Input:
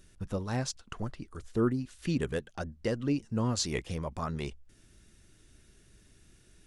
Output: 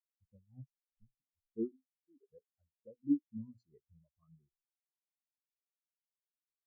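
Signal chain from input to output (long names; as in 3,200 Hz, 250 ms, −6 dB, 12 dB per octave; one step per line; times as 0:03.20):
mains-hum notches 60/120/180/240/300/360/420/480 Hz
0:01.72–0:02.28: high-pass filter 350 Hz 12 dB per octave
every bin expanded away from the loudest bin 4 to 1
level −3.5 dB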